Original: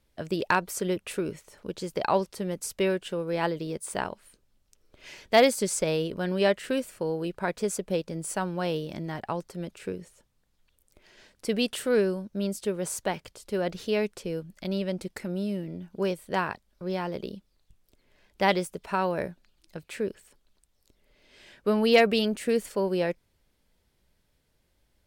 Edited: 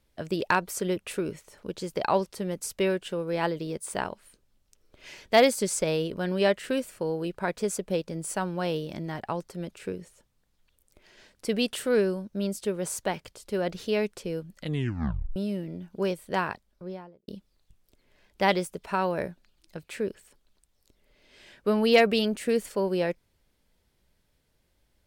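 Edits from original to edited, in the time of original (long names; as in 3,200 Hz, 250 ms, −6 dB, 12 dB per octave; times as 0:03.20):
0:14.55: tape stop 0.81 s
0:16.51–0:17.28: fade out and dull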